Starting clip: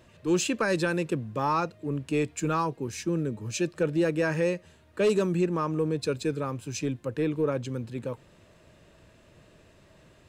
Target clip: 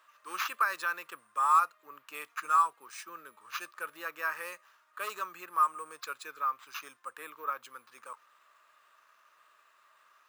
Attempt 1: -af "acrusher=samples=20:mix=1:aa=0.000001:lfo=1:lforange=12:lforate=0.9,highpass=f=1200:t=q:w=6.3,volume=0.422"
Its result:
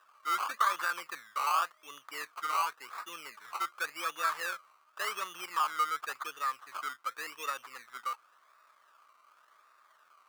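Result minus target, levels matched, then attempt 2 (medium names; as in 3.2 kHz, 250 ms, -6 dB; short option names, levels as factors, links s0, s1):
decimation with a swept rate: distortion +12 dB
-af "acrusher=samples=4:mix=1:aa=0.000001:lfo=1:lforange=2.4:lforate=0.9,highpass=f=1200:t=q:w=6.3,volume=0.422"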